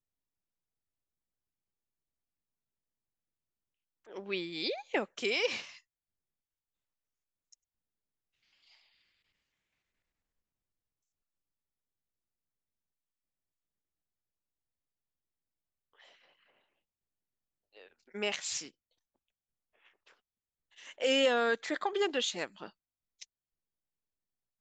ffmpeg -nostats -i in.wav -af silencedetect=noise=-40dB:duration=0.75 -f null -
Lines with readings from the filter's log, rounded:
silence_start: 0.00
silence_end: 4.13 | silence_duration: 4.13
silence_start: 5.70
silence_end: 18.15 | silence_duration: 12.45
silence_start: 18.67
silence_end: 20.88 | silence_duration: 2.21
silence_start: 23.23
silence_end: 24.61 | silence_duration: 1.38